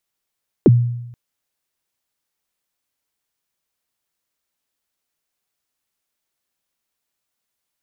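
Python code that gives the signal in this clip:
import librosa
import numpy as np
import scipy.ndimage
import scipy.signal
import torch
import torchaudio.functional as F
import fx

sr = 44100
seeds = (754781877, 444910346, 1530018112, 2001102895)

y = fx.drum_kick(sr, seeds[0], length_s=0.48, level_db=-4.5, start_hz=470.0, end_hz=120.0, sweep_ms=33.0, decay_s=0.9, click=False)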